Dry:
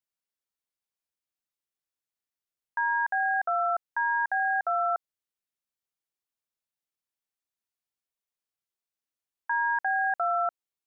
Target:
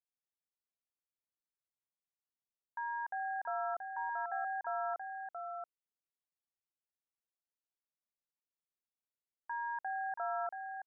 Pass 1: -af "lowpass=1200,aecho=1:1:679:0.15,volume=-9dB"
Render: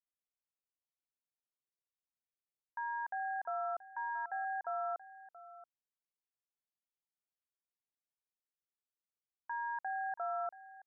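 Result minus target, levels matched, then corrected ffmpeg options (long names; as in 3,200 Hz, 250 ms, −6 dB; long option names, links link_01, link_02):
echo-to-direct −11 dB
-af "lowpass=1200,aecho=1:1:679:0.531,volume=-9dB"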